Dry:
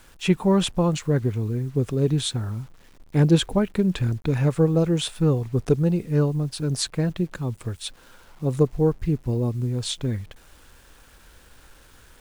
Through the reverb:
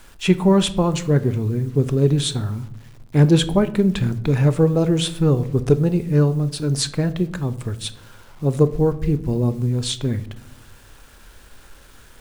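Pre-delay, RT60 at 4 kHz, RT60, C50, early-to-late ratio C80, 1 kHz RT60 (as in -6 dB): 3 ms, 0.45 s, 0.75 s, 16.5 dB, 19.5 dB, 0.60 s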